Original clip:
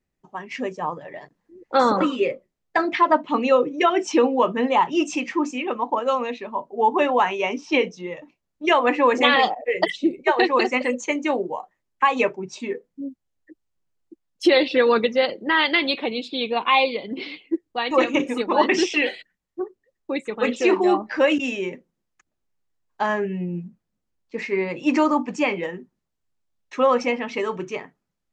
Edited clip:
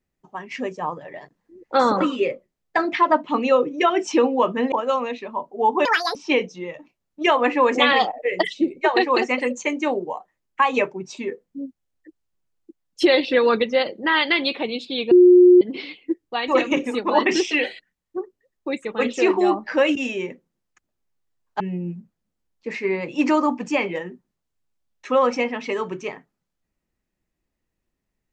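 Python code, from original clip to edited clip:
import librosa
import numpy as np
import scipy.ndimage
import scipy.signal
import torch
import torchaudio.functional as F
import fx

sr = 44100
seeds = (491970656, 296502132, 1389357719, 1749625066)

y = fx.edit(x, sr, fx.cut(start_s=4.72, length_s=1.19),
    fx.speed_span(start_s=7.04, length_s=0.54, speed=1.79),
    fx.bleep(start_s=16.54, length_s=0.5, hz=359.0, db=-7.0),
    fx.cut(start_s=23.03, length_s=0.25), tone=tone)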